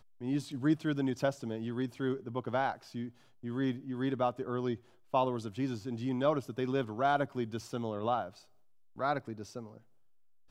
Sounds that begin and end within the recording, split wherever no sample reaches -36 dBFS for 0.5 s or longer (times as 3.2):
9–9.6